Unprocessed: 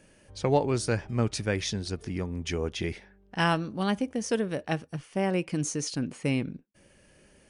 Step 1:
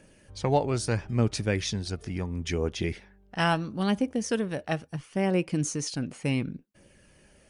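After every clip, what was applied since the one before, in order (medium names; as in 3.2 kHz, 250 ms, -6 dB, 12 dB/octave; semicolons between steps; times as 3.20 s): phaser 0.74 Hz, delay 1.6 ms, feedback 28%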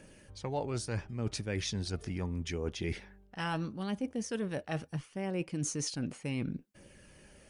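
band-stop 670 Hz, Q 21; reverse; compression 6:1, threshold -33 dBFS, peak gain reduction 14 dB; reverse; trim +1 dB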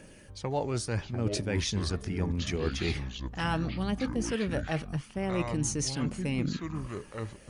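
ever faster or slower copies 510 ms, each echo -6 st, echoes 2, each echo -6 dB; trim +4 dB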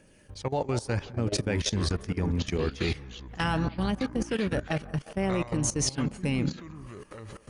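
feedback echo behind a band-pass 178 ms, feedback 53%, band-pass 800 Hz, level -11 dB; level held to a coarse grid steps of 16 dB; trim +5.5 dB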